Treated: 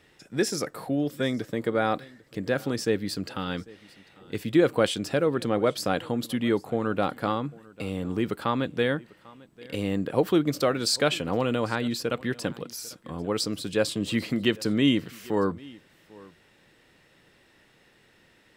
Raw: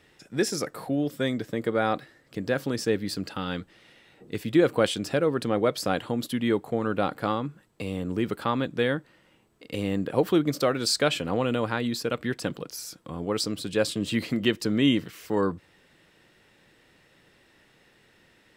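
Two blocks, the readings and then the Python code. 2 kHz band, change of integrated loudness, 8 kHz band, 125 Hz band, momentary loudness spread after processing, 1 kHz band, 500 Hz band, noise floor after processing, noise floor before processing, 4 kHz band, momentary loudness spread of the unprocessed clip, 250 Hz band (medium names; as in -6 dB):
0.0 dB, 0.0 dB, 0.0 dB, 0.0 dB, 12 LU, 0.0 dB, 0.0 dB, -61 dBFS, -61 dBFS, 0.0 dB, 11 LU, 0.0 dB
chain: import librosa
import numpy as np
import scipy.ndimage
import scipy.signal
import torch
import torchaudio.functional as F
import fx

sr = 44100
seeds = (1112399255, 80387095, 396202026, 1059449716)

y = x + 10.0 ** (-23.0 / 20.0) * np.pad(x, (int(796 * sr / 1000.0), 0))[:len(x)]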